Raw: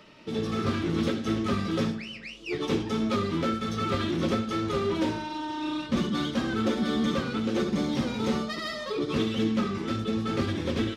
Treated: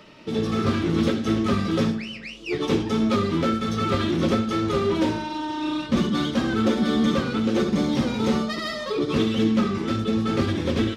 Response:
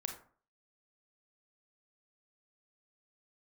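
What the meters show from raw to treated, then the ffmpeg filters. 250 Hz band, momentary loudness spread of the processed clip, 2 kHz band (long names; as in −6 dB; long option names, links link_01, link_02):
+5.5 dB, 6 LU, +4.0 dB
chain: -filter_complex "[0:a]asplit=2[link_01][link_02];[1:a]atrim=start_sample=2205,lowpass=1300[link_03];[link_02][link_03]afir=irnorm=-1:irlink=0,volume=-15dB[link_04];[link_01][link_04]amix=inputs=2:normalize=0,volume=4dB"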